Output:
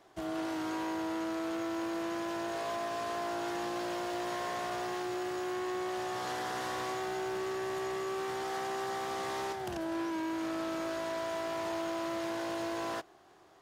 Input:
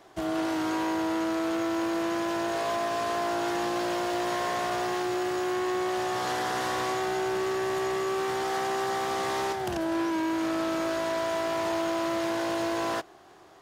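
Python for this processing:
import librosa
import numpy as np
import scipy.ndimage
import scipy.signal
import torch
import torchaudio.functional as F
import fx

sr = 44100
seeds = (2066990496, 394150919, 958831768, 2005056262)

y = fx.quant_companded(x, sr, bits=8, at=(6.37, 7.39))
y = y * librosa.db_to_amplitude(-7.0)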